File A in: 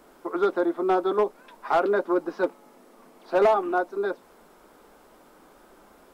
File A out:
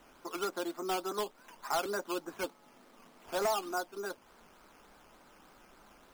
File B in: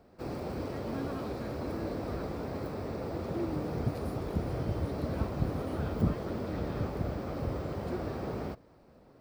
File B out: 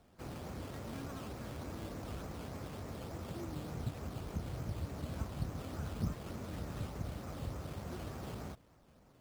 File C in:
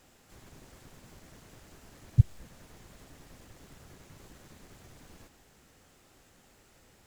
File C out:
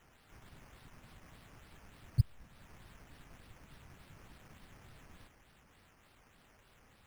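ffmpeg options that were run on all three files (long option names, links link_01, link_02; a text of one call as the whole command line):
ffmpeg -i in.wav -filter_complex "[0:a]equalizer=frequency=420:width_type=o:width=1.7:gain=-8,asplit=2[link_01][link_02];[link_02]acompressor=threshold=-42dB:ratio=6,volume=-1dB[link_03];[link_01][link_03]amix=inputs=2:normalize=0,acrusher=samples=9:mix=1:aa=0.000001:lfo=1:lforange=5.4:lforate=3.4,volume=-7.5dB" out.wav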